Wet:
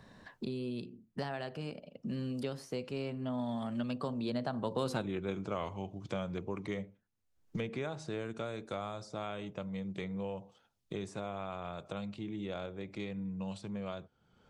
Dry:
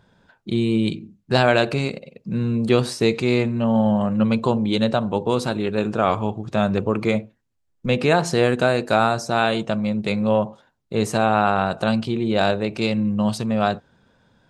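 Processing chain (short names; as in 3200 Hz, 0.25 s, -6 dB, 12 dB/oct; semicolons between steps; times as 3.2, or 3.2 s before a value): Doppler pass-by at 4.95, 33 m/s, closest 3.6 m; three-band squash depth 100%; gain +5 dB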